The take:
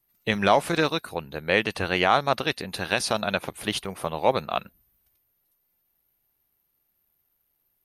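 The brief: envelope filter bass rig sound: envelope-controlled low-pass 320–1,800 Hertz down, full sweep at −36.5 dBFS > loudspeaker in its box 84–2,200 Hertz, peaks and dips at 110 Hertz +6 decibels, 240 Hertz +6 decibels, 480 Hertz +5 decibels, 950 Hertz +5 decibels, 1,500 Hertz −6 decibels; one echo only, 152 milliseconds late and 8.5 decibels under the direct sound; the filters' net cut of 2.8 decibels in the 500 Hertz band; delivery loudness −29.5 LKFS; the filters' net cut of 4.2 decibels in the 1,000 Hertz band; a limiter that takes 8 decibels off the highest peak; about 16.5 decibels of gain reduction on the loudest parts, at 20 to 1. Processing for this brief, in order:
parametric band 500 Hz −5 dB
parametric band 1,000 Hz −6 dB
downward compressor 20 to 1, threshold −35 dBFS
brickwall limiter −28.5 dBFS
single-tap delay 152 ms −8.5 dB
envelope-controlled low-pass 320–1,800 Hz down, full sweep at −36.5 dBFS
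loudspeaker in its box 84–2,200 Hz, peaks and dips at 110 Hz +6 dB, 240 Hz +6 dB, 480 Hz +5 dB, 950 Hz +5 dB, 1,500 Hz −6 dB
level +8.5 dB

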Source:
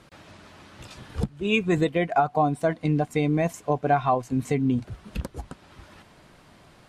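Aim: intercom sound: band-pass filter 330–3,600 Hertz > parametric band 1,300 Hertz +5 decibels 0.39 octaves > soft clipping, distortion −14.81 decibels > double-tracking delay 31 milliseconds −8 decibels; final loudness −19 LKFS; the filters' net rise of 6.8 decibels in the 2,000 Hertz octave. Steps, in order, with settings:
band-pass filter 330–3,600 Hz
parametric band 1,300 Hz +5 dB 0.39 octaves
parametric band 2,000 Hz +8.5 dB
soft clipping −14.5 dBFS
double-tracking delay 31 ms −8 dB
level +6.5 dB

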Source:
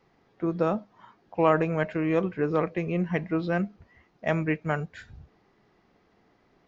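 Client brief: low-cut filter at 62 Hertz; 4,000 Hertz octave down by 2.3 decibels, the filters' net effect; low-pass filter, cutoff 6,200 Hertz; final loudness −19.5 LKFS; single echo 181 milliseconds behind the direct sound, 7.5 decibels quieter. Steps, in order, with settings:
high-pass filter 62 Hz
low-pass filter 6,200 Hz
parametric band 4,000 Hz −3 dB
single-tap delay 181 ms −7.5 dB
level +8 dB

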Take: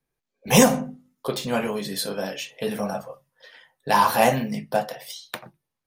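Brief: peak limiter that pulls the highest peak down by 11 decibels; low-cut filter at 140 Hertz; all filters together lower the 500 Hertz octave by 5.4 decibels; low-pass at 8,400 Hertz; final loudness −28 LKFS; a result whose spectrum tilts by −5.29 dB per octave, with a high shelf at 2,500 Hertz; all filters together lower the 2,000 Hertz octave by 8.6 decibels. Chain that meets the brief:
high-pass filter 140 Hz
low-pass filter 8,400 Hz
parametric band 500 Hz −5.5 dB
parametric band 2,000 Hz −7.5 dB
high-shelf EQ 2,500 Hz −7.5 dB
level +3 dB
brickwall limiter −14.5 dBFS

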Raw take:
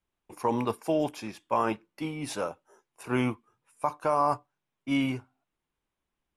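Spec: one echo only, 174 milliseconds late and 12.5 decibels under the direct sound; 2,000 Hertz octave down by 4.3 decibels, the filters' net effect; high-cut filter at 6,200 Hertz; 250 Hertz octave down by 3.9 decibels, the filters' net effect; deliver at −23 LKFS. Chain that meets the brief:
low-pass filter 6,200 Hz
parametric band 250 Hz −4.5 dB
parametric band 2,000 Hz −5.5 dB
single-tap delay 174 ms −12.5 dB
level +9 dB

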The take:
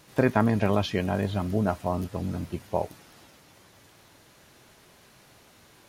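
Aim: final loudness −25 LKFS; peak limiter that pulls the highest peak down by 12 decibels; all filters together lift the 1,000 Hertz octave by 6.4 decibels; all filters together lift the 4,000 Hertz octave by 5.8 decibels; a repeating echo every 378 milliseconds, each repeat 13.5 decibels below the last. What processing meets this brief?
parametric band 1,000 Hz +8 dB
parametric band 4,000 Hz +7 dB
brickwall limiter −15 dBFS
repeating echo 378 ms, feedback 21%, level −13.5 dB
level +4 dB

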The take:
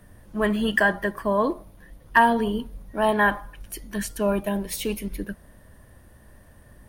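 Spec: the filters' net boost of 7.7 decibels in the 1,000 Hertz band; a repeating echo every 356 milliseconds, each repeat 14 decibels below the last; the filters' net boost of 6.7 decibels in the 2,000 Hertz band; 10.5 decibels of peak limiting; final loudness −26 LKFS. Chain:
parametric band 1,000 Hz +7.5 dB
parametric band 2,000 Hz +5.5 dB
brickwall limiter −9 dBFS
repeating echo 356 ms, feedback 20%, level −14 dB
level −3.5 dB

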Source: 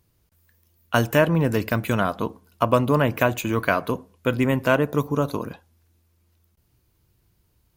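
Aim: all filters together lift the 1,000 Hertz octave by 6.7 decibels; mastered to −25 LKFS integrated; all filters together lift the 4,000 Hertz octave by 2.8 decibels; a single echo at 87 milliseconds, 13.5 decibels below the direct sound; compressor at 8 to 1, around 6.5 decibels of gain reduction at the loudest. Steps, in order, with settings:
parametric band 1,000 Hz +8 dB
parametric band 4,000 Hz +3.5 dB
downward compressor 8 to 1, threshold −16 dBFS
single-tap delay 87 ms −13.5 dB
level −1.5 dB

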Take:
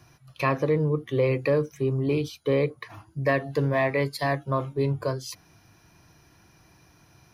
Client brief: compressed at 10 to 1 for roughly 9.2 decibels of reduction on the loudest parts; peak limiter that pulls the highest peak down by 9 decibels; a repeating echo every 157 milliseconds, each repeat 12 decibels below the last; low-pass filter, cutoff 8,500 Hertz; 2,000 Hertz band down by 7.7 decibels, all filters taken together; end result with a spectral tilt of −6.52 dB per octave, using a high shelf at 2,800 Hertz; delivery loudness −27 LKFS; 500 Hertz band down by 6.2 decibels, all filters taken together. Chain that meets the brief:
low-pass filter 8,500 Hz
parametric band 500 Hz −7 dB
parametric band 2,000 Hz −6.5 dB
high-shelf EQ 2,800 Hz −5.5 dB
downward compressor 10 to 1, threshold −32 dBFS
brickwall limiter −30 dBFS
repeating echo 157 ms, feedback 25%, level −12 dB
level +12.5 dB

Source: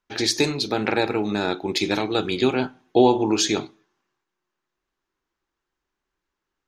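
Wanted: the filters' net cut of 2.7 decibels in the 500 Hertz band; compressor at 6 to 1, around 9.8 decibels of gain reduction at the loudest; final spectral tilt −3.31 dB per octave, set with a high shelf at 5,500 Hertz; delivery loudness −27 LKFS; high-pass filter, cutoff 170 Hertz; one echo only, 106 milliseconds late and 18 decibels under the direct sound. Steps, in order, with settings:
high-pass filter 170 Hz
parametric band 500 Hz −3.5 dB
high-shelf EQ 5,500 Hz −3.5 dB
downward compressor 6 to 1, threshold −23 dBFS
single-tap delay 106 ms −18 dB
level +1.5 dB

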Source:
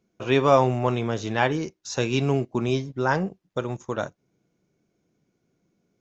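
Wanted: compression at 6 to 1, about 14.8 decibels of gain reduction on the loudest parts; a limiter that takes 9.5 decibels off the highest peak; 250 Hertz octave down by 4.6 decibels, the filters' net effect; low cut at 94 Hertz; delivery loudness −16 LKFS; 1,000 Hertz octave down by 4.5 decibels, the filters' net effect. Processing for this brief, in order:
high-pass filter 94 Hz
parametric band 250 Hz −5.5 dB
parametric band 1,000 Hz −5.5 dB
downward compressor 6 to 1, threshold −31 dBFS
level +23 dB
brickwall limiter −5 dBFS

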